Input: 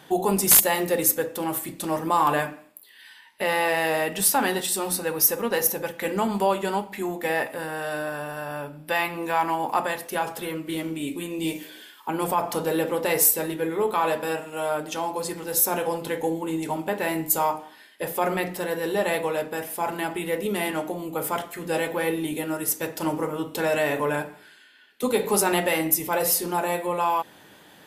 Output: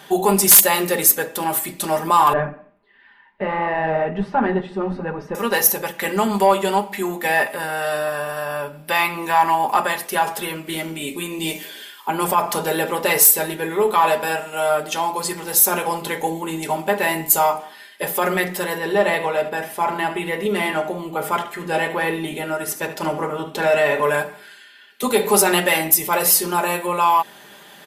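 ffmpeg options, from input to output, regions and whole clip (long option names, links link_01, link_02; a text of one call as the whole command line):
ffmpeg -i in.wav -filter_complex "[0:a]asettb=1/sr,asplit=3[link_01][link_02][link_03];[link_01]atrim=end=2.334[link_04];[link_02]atrim=start=2.33:end=5.35,asetpts=PTS-STARTPTS,afade=type=in:duration=0.004:curve=qsin,afade=type=out:start_time=3.016:duration=0.004:curve=qsin,lowpass=1800,aemphasis=mode=reproduction:type=riaa,flanger=delay=2.7:depth=8.9:regen=-43:speed=1.4:shape=triangular[link_05];[link_03]atrim=start=5.346[link_06];[link_04][link_05]acrossfade=duration=0.004:curve1=hsin:curve2=qsin[link_07];[link_07][link_06]acrossfade=duration=0.004:curve1=qsin:curve2=hsin,asettb=1/sr,asplit=3[link_08][link_09][link_10];[link_08]atrim=end=18.784[link_11];[link_09]atrim=start=18.78:end=24.03,asetpts=PTS-STARTPTS,afade=type=in:duration=0.004:curve=qsin,afade=type=out:start_time=5.246:duration=0.004:curve=qsin,lowpass=frequency=3000:poles=1,aecho=1:1:74:0.237,atrim=end_sample=231525[link_12];[link_10]atrim=start=24.026[link_13];[link_11][link_12]acrossfade=duration=0.004:curve1=hsin:curve2=qsin[link_14];[link_14][link_13]acrossfade=duration=0.004:curve1=qsin:curve2=hsin,lowshelf=frequency=430:gain=-7,aecho=1:1:5:0.52,acontrast=88" out.wav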